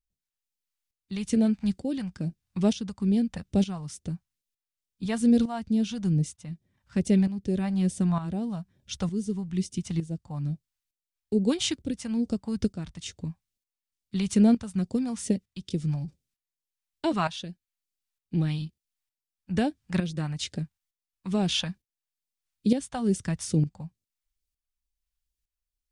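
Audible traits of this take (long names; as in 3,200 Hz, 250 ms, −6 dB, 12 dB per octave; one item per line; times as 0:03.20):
phaser sweep stages 2, 2.3 Hz, lowest notch 360–1,100 Hz
tremolo saw up 1.1 Hz, depth 70%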